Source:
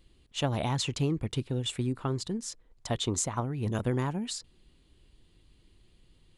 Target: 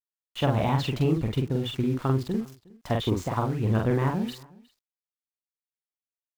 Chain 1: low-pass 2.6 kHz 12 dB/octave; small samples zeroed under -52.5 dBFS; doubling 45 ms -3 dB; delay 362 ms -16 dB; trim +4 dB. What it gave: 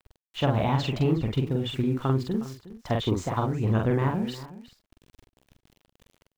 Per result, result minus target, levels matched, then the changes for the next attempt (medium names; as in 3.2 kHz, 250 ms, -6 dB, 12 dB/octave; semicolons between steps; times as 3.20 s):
echo-to-direct +8 dB; small samples zeroed: distortion -4 dB
change: delay 362 ms -24 dB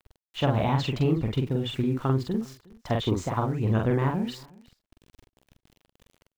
small samples zeroed: distortion -4 dB
change: small samples zeroed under -46 dBFS